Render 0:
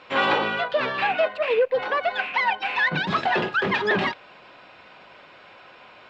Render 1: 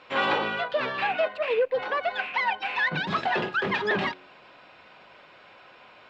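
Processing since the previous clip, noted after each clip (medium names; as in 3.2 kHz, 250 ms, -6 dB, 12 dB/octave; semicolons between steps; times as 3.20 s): de-hum 91.87 Hz, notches 4; trim -3.5 dB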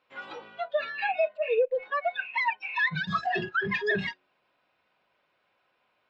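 spectral noise reduction 21 dB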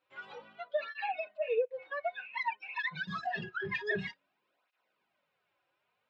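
cancelling through-zero flanger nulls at 0.53 Hz, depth 4.8 ms; trim -4.5 dB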